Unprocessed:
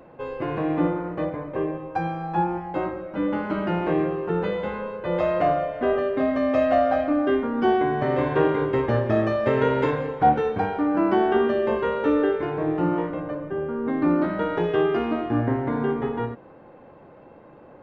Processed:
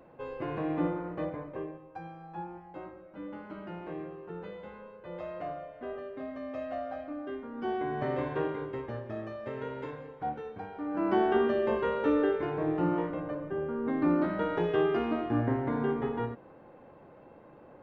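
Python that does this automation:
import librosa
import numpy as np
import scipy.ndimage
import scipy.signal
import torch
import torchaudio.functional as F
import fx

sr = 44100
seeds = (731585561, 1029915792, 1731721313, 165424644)

y = fx.gain(x, sr, db=fx.line((1.4, -7.5), (1.85, -17.0), (7.41, -17.0), (8.04, -8.0), (9.03, -17.0), (10.69, -17.0), (11.16, -5.5)))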